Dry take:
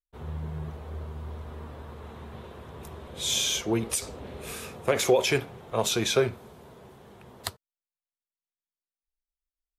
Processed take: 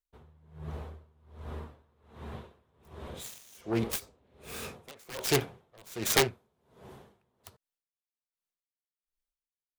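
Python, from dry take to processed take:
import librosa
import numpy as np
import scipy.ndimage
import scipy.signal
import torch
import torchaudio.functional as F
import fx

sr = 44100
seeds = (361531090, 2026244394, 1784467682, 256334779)

y = fx.self_delay(x, sr, depth_ms=0.46)
y = (np.mod(10.0 ** (15.0 / 20.0) * y + 1.0, 2.0) - 1.0) / 10.0 ** (15.0 / 20.0)
y = y * 10.0 ** (-29 * (0.5 - 0.5 * np.cos(2.0 * np.pi * 1.3 * np.arange(len(y)) / sr)) / 20.0)
y = y * librosa.db_to_amplitude(1.5)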